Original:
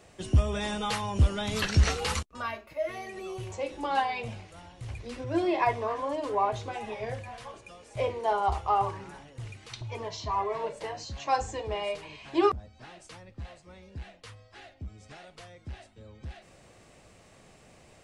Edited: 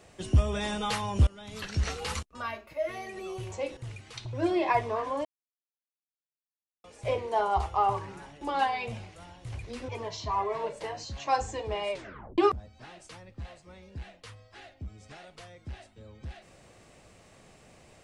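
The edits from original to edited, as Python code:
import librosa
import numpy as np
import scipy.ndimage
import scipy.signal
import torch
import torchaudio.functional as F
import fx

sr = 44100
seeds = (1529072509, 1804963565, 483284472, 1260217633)

y = fx.edit(x, sr, fx.fade_in_from(start_s=1.27, length_s=1.41, floor_db=-18.5),
    fx.swap(start_s=3.77, length_s=1.48, other_s=9.33, other_length_s=0.56),
    fx.silence(start_s=6.17, length_s=1.59),
    fx.tape_stop(start_s=11.92, length_s=0.46), tone=tone)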